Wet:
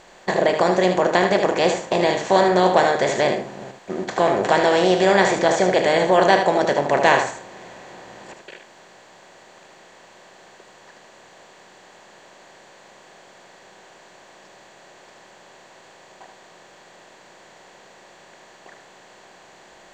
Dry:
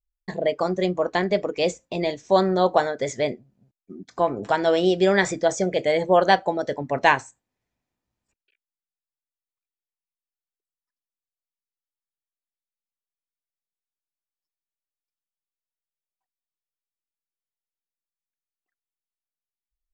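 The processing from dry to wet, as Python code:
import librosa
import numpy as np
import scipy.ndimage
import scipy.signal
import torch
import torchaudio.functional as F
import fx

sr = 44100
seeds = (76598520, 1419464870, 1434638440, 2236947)

p1 = fx.bin_compress(x, sr, power=0.4)
p2 = p1 + fx.echo_single(p1, sr, ms=76, db=-7.0, dry=0)
y = p2 * librosa.db_to_amplitude(-2.5)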